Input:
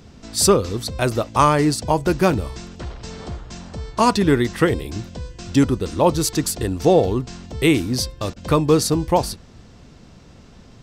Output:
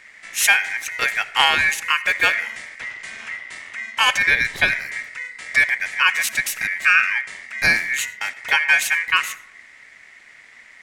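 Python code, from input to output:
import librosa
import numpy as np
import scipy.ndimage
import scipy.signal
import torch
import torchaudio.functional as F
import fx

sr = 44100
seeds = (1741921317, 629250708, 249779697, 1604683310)

y = x * np.sin(2.0 * np.pi * 2000.0 * np.arange(len(x)) / sr)
y = fx.rev_freeverb(y, sr, rt60_s=0.87, hf_ratio=0.35, predelay_ms=40, drr_db=17.5)
y = F.gain(torch.from_numpy(y), 1.5).numpy()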